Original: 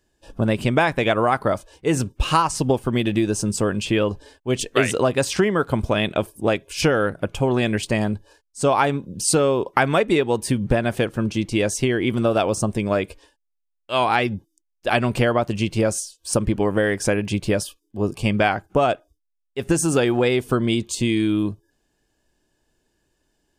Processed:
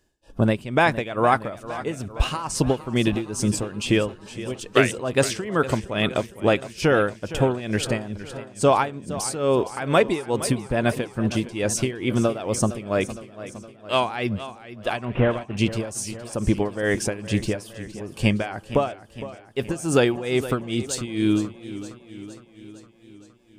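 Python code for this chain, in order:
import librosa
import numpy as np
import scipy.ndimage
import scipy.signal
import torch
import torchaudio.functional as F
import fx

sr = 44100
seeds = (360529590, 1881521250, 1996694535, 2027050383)

y = fx.cvsd(x, sr, bps=16000, at=(15.05, 15.57))
y = y * (1.0 - 0.84 / 2.0 + 0.84 / 2.0 * np.cos(2.0 * np.pi * 2.3 * (np.arange(len(y)) / sr)))
y = fx.echo_warbled(y, sr, ms=463, feedback_pct=61, rate_hz=2.8, cents=84, wet_db=-14.5)
y = y * librosa.db_to_amplitude(1.5)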